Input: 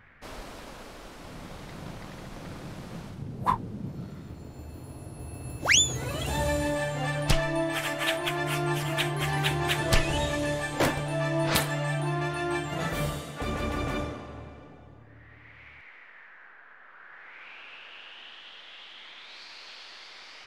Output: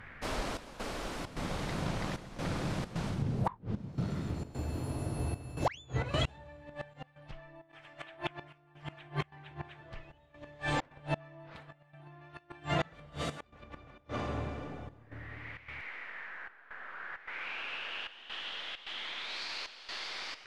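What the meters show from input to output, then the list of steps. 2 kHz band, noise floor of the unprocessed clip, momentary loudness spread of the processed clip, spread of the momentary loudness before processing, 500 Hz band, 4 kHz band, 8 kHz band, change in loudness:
-9.0 dB, -51 dBFS, 17 LU, 19 LU, -9.0 dB, -9.0 dB, -18.5 dB, -10.5 dB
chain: dynamic EQ 310 Hz, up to -4 dB, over -42 dBFS, Q 1.1; treble ducked by the level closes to 2500 Hz, closed at -25.5 dBFS; flipped gate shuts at -22 dBFS, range -29 dB; step gate "xxxxx..xxxx.xx" 132 bpm -12 dB; in parallel at 0 dB: limiter -29.5 dBFS, peak gain reduction 9 dB

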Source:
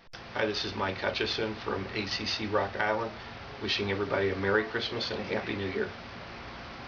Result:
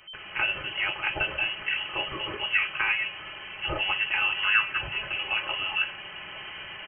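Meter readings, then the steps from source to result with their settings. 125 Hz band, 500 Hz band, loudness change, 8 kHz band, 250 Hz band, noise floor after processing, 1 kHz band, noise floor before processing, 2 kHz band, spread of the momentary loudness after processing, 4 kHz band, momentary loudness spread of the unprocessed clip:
-7.0 dB, -10.5 dB, +4.5 dB, n/a, -11.5 dB, -42 dBFS, 0.0 dB, -45 dBFS, +8.0 dB, 15 LU, +5.0 dB, 14 LU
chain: comb 4.4 ms, depth 61%; inverted band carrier 3100 Hz; gain +1.5 dB

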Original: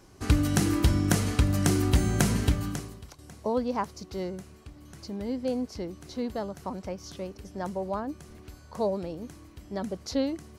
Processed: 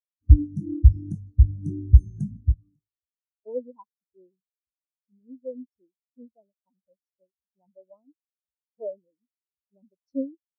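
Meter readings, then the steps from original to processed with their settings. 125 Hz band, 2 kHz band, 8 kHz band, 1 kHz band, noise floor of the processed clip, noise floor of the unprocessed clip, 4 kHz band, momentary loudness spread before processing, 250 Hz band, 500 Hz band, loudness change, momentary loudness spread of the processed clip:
+5.0 dB, under -40 dB, under -30 dB, -24.0 dB, under -85 dBFS, -52 dBFS, under -40 dB, 20 LU, -6.5 dB, -7.5 dB, +6.5 dB, 19 LU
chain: tone controls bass -2 dB, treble +10 dB; spectral expander 4:1

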